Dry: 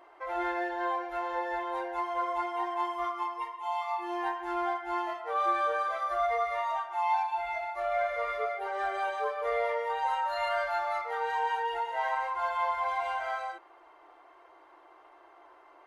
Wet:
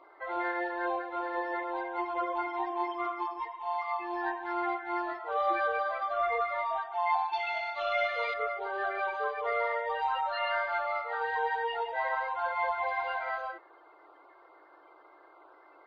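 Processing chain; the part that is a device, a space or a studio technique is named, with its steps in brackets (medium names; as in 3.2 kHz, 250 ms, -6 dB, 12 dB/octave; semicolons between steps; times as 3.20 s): clip after many re-uploads (low-pass 4.4 kHz 24 dB/octave; coarse spectral quantiser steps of 30 dB); 7.33–8.34 s: high-order bell 4.2 kHz +13 dB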